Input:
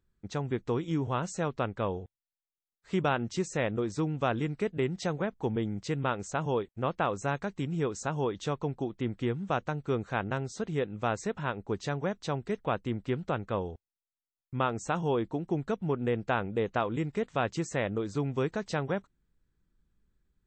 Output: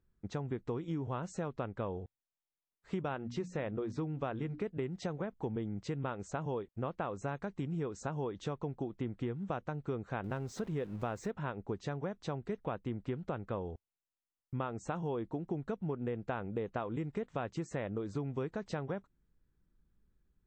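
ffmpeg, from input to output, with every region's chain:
ffmpeg -i in.wav -filter_complex "[0:a]asettb=1/sr,asplit=3[link_01][link_02][link_03];[link_01]atrim=end=3.084[link_04];[link_02]atrim=start=3.08:end=4.64,asetpts=PTS-STARTPTS,afade=type=in:duration=0.004:curve=qsin,afade=type=out:start_time=1.556:duration=0.004:curve=qsin,lowpass=5700,bandreject=frequency=60:width_type=h:width=6,bandreject=frequency=120:width_type=h:width=6,bandreject=frequency=180:width_type=h:width=6,bandreject=frequency=240:width_type=h:width=6,bandreject=frequency=300:width_type=h:width=6[link_05];[link_03]atrim=start=4.636[link_06];[link_04][link_05]acrossfade=duration=0.004:curve1=hsin:curve2=qsin[link_07];[link_07][link_06]acrossfade=duration=0.004:curve1=qsin:curve2=hsin,asettb=1/sr,asplit=3[link_08][link_09][link_10];[link_08]atrim=end=10.244[link_11];[link_09]atrim=start=10.24:end=11.31,asetpts=PTS-STARTPTS,afade=type=in:duration=0.004:curve=qsin,afade=type=out:start_time=1.066:duration=0.004:curve=qsin,aeval=exprs='val(0)+0.5*0.00562*sgn(val(0))':channel_layout=same,acompressor=mode=upward:threshold=-36dB:ratio=2.5:attack=3.2:release=140:knee=2.83:detection=peak[link_12];[link_10]atrim=start=11.306[link_13];[link_11][link_12]acrossfade=duration=0.004:curve1=hsin:curve2=qsin[link_14];[link_14][link_13]acrossfade=duration=0.004:curve1=qsin:curve2=hsin,highshelf=frequency=2400:gain=-9.5,acompressor=threshold=-34dB:ratio=4" out.wav

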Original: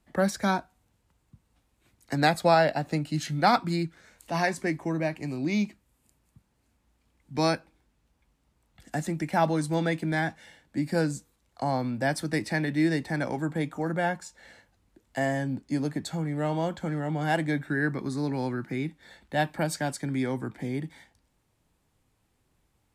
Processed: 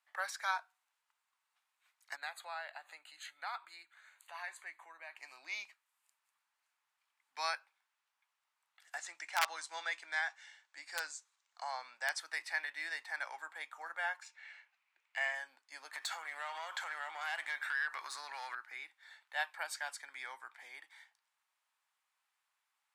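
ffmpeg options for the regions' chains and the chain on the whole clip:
ffmpeg -i in.wav -filter_complex "[0:a]asettb=1/sr,asplit=3[link_01][link_02][link_03];[link_01]atrim=end=2.164[link_04];[link_02]atrim=start=2.16:end=5.17,asetpts=PTS-STARTPTS,afade=type=in:duration=0.004:curve=qsin,afade=type=out:start_time=3.006:duration=0.004:curve=qsin,acompressor=threshold=-38dB:ratio=2:attack=3.2:release=140:knee=1:detection=peak,asuperstop=centerf=5400:order=4:qfactor=3.1[link_05];[link_03]atrim=start=5.166[link_06];[link_04][link_05]acrossfade=duration=0.004:curve1=hsin:curve2=qsin[link_07];[link_07][link_06]acrossfade=duration=0.004:curve1=qsin:curve2=hsin,asettb=1/sr,asplit=3[link_08][link_09][link_10];[link_08]atrim=end=8.984[link_11];[link_09]atrim=start=8.98:end=12.2,asetpts=PTS-STARTPTS,afade=type=in:duration=0.004:curve=qsin,afade=type=out:start_time=3.216:duration=0.004:curve=qsin,lowpass=frequency=6900:width_type=q:width=2,aeval=exprs='(mod(5.31*val(0)+1,2)-1)/5.31':channel_layout=same[link_12];[link_10]atrim=start=12.196[link_13];[link_11][link_12]acrossfade=duration=0.004:curve1=hsin:curve2=qsin[link_14];[link_14][link_13]acrossfade=duration=0.004:curve1=qsin:curve2=hsin,asettb=1/sr,asplit=3[link_15][link_16][link_17];[link_15]atrim=end=14.224[link_18];[link_16]atrim=start=14.22:end=15.35,asetpts=PTS-STARTPTS,afade=type=in:duration=0.004:curve=qsin,afade=type=out:start_time=1.126:duration=0.004:curve=qsin,equalizer=frequency=2400:width_type=o:width=0.48:gain=13,adynamicsmooth=sensitivity=5.5:basefreq=7400[link_19];[link_17]atrim=start=15.346[link_20];[link_18][link_19]acrossfade=duration=0.004:curve1=hsin:curve2=qsin[link_21];[link_21][link_20]acrossfade=duration=0.004:curve1=qsin:curve2=hsin,asettb=1/sr,asplit=3[link_22][link_23][link_24];[link_22]atrim=end=15.934[link_25];[link_23]atrim=start=15.93:end=18.55,asetpts=PTS-STARTPTS,afade=type=in:duration=0.004:curve=qsin,afade=type=out:start_time=2.616:duration=0.004:curve=qsin,equalizer=frequency=140:width_type=o:width=2.7:gain=-11.5,acompressor=threshold=-40dB:ratio=6:attack=3.2:release=140:knee=1:detection=peak,aeval=exprs='0.0596*sin(PI/2*3.55*val(0)/0.0596)':channel_layout=same[link_26];[link_24]atrim=start=18.546[link_27];[link_25][link_26]acrossfade=duration=0.004:curve1=hsin:curve2=qsin[link_28];[link_28][link_27]acrossfade=duration=0.004:curve1=qsin:curve2=hsin,highpass=frequency=1000:width=0.5412,highpass=frequency=1000:width=1.3066,highshelf=frequency=3900:gain=-7.5,volume=-3dB" out.wav

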